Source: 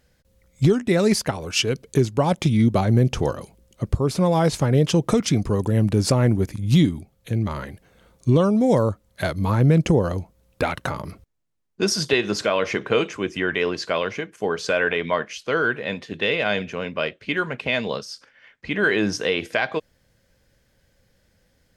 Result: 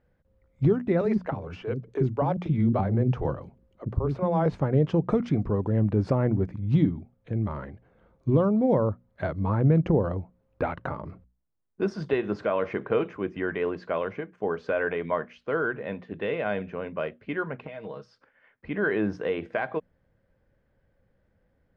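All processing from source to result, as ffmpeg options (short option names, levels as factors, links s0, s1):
-filter_complex "[0:a]asettb=1/sr,asplit=3[s0][s1][s2];[s0]atrim=end=1.014[s3];[s1]atrim=start=1.01:end=4.46,asetpts=PTS-STARTPTS,afade=t=in:d=0.004:c=qsin,afade=t=out:st=3.446:d=0.004:c=qsin,deesser=0.6,acrossover=split=340[s4][s5];[s4]adelay=40[s6];[s6][s5]amix=inputs=2:normalize=0,atrim=end_sample=152145[s7];[s2]atrim=start=4.456[s8];[s3][s7]acrossfade=d=0.004:c1=hsin:c2=qsin[s9];[s9][s8]acrossfade=d=0.004:c1=qsin:c2=hsin,asettb=1/sr,asplit=3[s10][s11][s12];[s10]atrim=end=17.634[s13];[s11]atrim=start=17.63:end=18.09,asetpts=PTS-STARTPTS,afade=t=in:d=0.004:c=qsin,afade=t=out:st=0.456:d=0.004:c=qsin,aecho=1:1:6.4:0.66,atrim=end_sample=20286,acompressor=threshold=0.0355:ratio=6:attack=3.2:release=140:knee=1:detection=peak[s14];[s12]atrim=start=18.086[s15];[s13][s14]acrossfade=d=0.004:c1=hsin:c2=qsin[s16];[s16][s15]acrossfade=d=0.004:c1=qsin:c2=hsin,lowpass=1400,bandreject=f=60:t=h:w=6,bandreject=f=120:t=h:w=6,bandreject=f=180:t=h:w=6,bandreject=f=240:t=h:w=6,volume=0.631"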